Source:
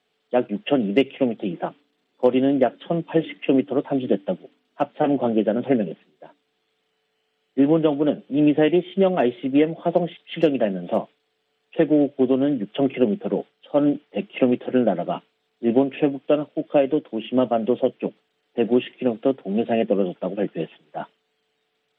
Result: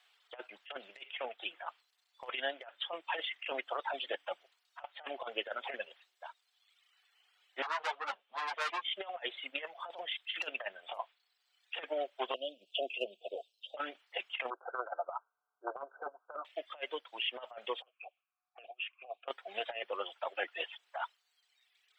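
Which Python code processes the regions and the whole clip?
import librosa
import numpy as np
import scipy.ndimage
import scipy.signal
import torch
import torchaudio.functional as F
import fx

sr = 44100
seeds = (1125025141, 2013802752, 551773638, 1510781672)

y = fx.chain(x, sr, fx.peak_eq(hz=120.0, db=10.5, octaves=0.73),
    fx.tube_stage(drive_db=24.0, bias=0.7),
    fx.ensemble(), at=(7.62, 8.85))
y = fx.chain(y, sr, fx.cheby1_bandstop(low_hz=660.0, high_hz=2600.0, order=4),
    fx.peak_eq(hz=1900.0, db=-13.5, octaves=0.51), at=(12.34, 13.77))
y = fx.chain(y, sr, fx.clip_hard(threshold_db=-13.0),
    fx.brickwall_bandpass(low_hz=280.0, high_hz=1600.0), at=(14.5, 16.45))
y = fx.chain(y, sr, fx.over_compress(threshold_db=-23.0, ratio=-0.5),
    fx.env_phaser(low_hz=470.0, high_hz=1400.0, full_db=-20.0),
    fx.vowel_filter(vowel='a'), at=(17.82, 19.28))
y = fx.dereverb_blind(y, sr, rt60_s=1.3)
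y = scipy.signal.sosfilt(scipy.signal.butter(4, 870.0, 'highpass', fs=sr, output='sos'), y)
y = fx.over_compress(y, sr, threshold_db=-38.0, ratio=-0.5)
y = F.gain(torch.from_numpy(y), 1.5).numpy()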